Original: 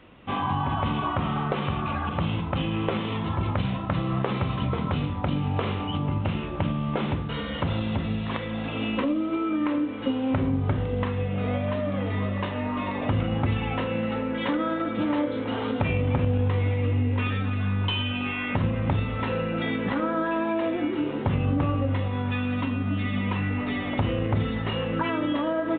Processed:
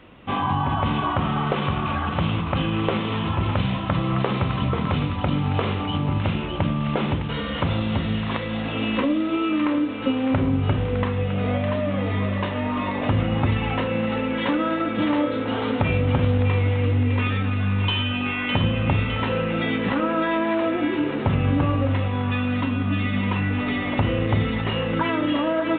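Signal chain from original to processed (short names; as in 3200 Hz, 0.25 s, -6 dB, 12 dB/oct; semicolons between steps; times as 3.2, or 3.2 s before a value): thin delay 0.608 s, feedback 50%, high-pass 1500 Hz, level -4.5 dB; gain +3.5 dB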